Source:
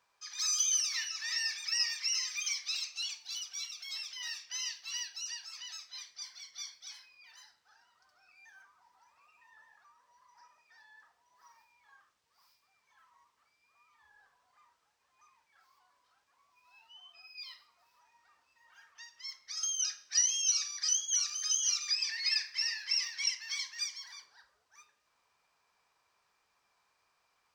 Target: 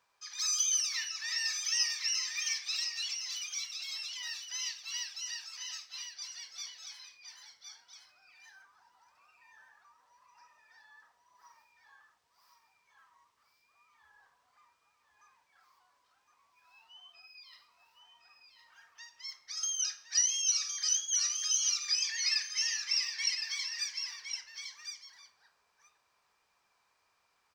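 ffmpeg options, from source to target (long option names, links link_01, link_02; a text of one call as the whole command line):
ffmpeg -i in.wav -filter_complex "[0:a]asettb=1/sr,asplit=3[link_01][link_02][link_03];[link_01]atrim=end=6.354[link_04];[link_02]atrim=start=6.35:end=6.89,asetpts=PTS-STARTPTS,afade=type=in:duration=0.004:curve=qsin,afade=type=out:start_time=0.536:duration=0.004:curve=qsin,equalizer=frequency=500:width_type=o:width=0.49:gain=11[link_05];[link_03]atrim=start=6.886[link_06];[link_04][link_05]acrossfade=duration=0.004:curve1=hsin:curve2=qsin[link_07];[link_07][link_06]acrossfade=duration=0.004:curve1=qsin:curve2=hsin,asplit=3[link_08][link_09][link_10];[link_08]afade=type=out:start_time=17.11:duration=0.02[link_11];[link_09]acompressor=threshold=-52dB:ratio=6,afade=type=in:start_time=17.11:duration=0.02,afade=type=out:start_time=17.52:duration=0.02[link_12];[link_10]afade=type=in:start_time=17.52:duration=0.02[link_13];[link_11][link_12][link_13]amix=inputs=3:normalize=0,aecho=1:1:1062:0.447" out.wav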